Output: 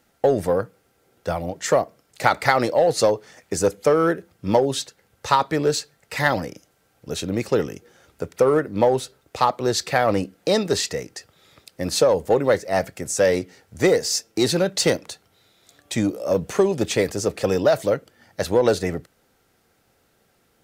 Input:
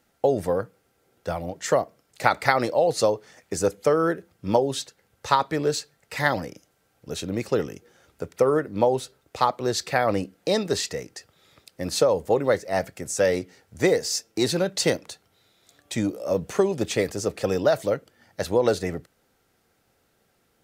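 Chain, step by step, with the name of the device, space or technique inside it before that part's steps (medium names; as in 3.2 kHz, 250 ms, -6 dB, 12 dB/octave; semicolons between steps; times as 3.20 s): parallel distortion (in parallel at -5.5 dB: hard clipper -17.5 dBFS, distortion -11 dB)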